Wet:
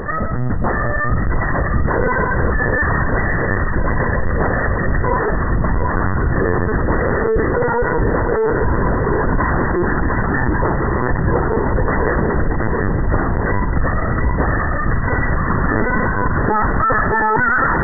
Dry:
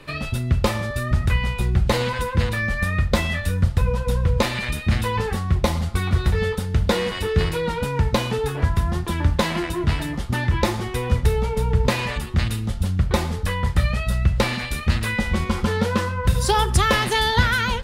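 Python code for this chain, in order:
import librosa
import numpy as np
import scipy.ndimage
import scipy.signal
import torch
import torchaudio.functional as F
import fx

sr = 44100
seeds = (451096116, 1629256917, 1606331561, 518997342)

p1 = fx.dynamic_eq(x, sr, hz=1400.0, q=2.1, threshold_db=-40.0, ratio=4.0, max_db=7)
p2 = fx.fuzz(p1, sr, gain_db=42.0, gate_db=-44.0)
p3 = p1 + F.gain(torch.from_numpy(p2), -9.0).numpy()
p4 = fx.harmonic_tremolo(p3, sr, hz=4.5, depth_pct=50, crossover_hz=1200.0)
p5 = p4 + fx.echo_feedback(p4, sr, ms=715, feedback_pct=51, wet_db=-4.0, dry=0)
p6 = fx.rev_spring(p5, sr, rt60_s=3.3, pass_ms=(59,), chirp_ms=75, drr_db=9.0)
p7 = fx.lpc_vocoder(p6, sr, seeds[0], excitation='pitch_kept', order=16)
p8 = fx.brickwall_lowpass(p7, sr, high_hz=2000.0)
p9 = fx.env_flatten(p8, sr, amount_pct=50)
y = F.gain(torch.from_numpy(p9), -3.0).numpy()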